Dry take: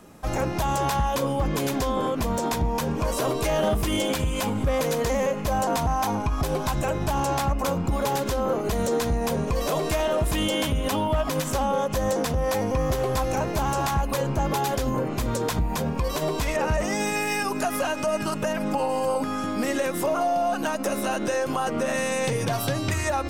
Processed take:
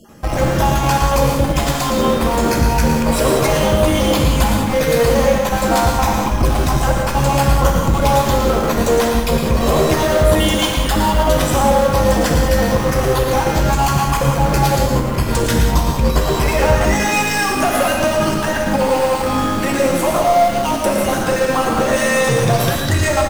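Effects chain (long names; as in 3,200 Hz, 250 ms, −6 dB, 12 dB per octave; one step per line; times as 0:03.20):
time-frequency cells dropped at random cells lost 31%
notch filter 420 Hz, Q 12
in parallel at −5 dB: comparator with hysteresis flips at −31 dBFS
on the sum: single-tap delay 113 ms −8 dB
reverb whose tail is shaped and stops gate 220 ms flat, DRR 0.5 dB
level +5.5 dB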